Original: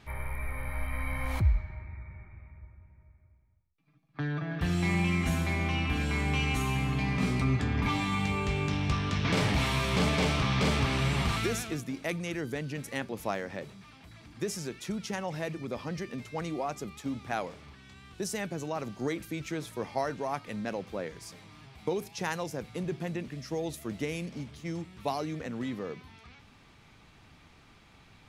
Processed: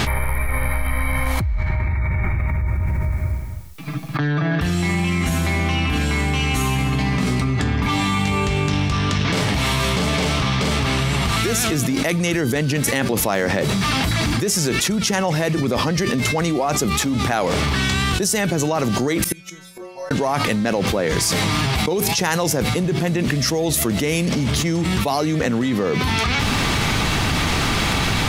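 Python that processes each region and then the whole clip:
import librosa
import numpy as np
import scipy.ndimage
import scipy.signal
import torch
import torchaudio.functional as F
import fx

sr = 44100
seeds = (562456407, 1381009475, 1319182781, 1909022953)

y = fx.chain(x, sr, fx.stiff_resonator(f0_hz=180.0, decay_s=0.7, stiffness=0.002),
    fx.gate_flip(shuts_db=-49.0, range_db=-25), at=(19.24, 20.11))
y = fx.high_shelf(y, sr, hz=4600.0, db=5.5)
y = fx.notch(y, sr, hz=2400.0, q=26.0)
y = fx.env_flatten(y, sr, amount_pct=100)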